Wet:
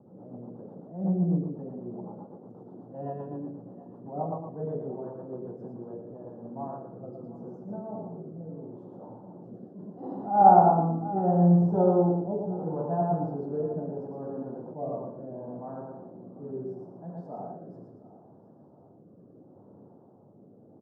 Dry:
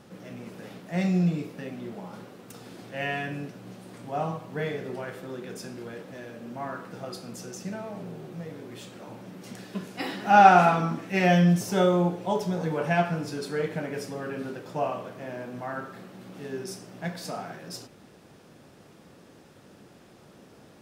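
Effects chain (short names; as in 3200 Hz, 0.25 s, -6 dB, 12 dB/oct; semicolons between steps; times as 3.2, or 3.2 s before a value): elliptic band-pass 100–900 Hz, stop band 40 dB; feedback echo 0.115 s, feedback 32%, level -3.5 dB; rotary speaker horn 8 Hz, later 0.75 Hz, at 5.28; on a send: thinning echo 0.717 s, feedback 53%, high-pass 540 Hz, level -17 dB; on the sum: attack slew limiter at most 130 dB/s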